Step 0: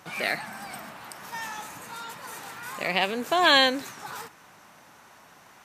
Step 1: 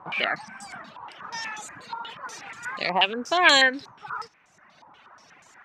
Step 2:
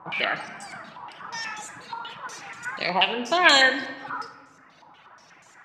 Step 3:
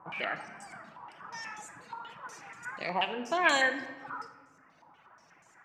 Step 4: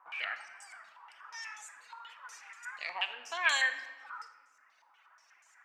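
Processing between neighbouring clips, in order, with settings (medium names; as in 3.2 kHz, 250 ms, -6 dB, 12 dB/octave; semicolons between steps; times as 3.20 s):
reverb removal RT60 1.4 s; step-sequenced low-pass 8.3 Hz 1–7.3 kHz
simulated room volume 1100 m³, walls mixed, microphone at 0.68 m
peaking EQ 3.8 kHz -9.5 dB 0.84 oct; trim -7 dB
high-pass 1.4 kHz 12 dB/octave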